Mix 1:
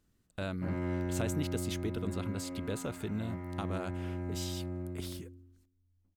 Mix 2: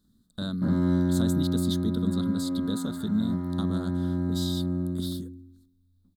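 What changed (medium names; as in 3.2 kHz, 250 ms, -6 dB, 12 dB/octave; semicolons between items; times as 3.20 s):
background +6.5 dB; master: add FFT filter 130 Hz 0 dB, 220 Hz +13 dB, 330 Hz 0 dB, 810 Hz -5 dB, 1.2 kHz +1 dB, 1.7 kHz -3 dB, 2.5 kHz -26 dB, 3.7 kHz +13 dB, 5.8 kHz -1 dB, 9.6 kHz +5 dB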